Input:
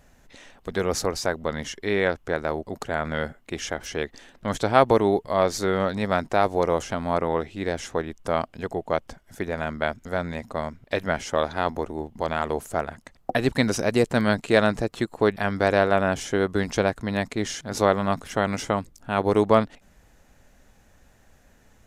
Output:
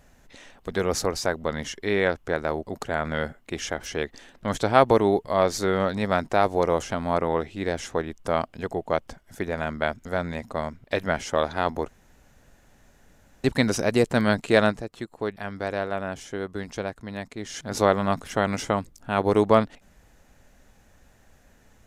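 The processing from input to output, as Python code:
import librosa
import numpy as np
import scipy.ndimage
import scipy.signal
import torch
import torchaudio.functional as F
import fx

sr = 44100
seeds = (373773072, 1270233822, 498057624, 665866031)

y = fx.edit(x, sr, fx.room_tone_fill(start_s=11.88, length_s=1.56),
    fx.fade_down_up(start_s=14.69, length_s=2.88, db=-8.5, fade_s=0.38, curve='exp'), tone=tone)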